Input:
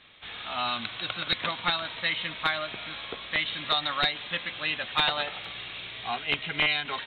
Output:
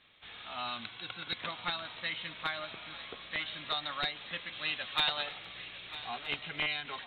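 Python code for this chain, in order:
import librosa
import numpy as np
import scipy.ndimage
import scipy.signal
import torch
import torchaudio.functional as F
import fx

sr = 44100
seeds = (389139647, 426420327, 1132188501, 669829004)

y = fx.notch_comb(x, sr, f0_hz=610.0, at=(0.89, 1.37))
y = fx.high_shelf(y, sr, hz=4100.0, db=11.0, at=(4.52, 5.33))
y = fx.echo_swing(y, sr, ms=1268, ratio=3, feedback_pct=52, wet_db=-16)
y = y * 10.0 ** (-8.5 / 20.0)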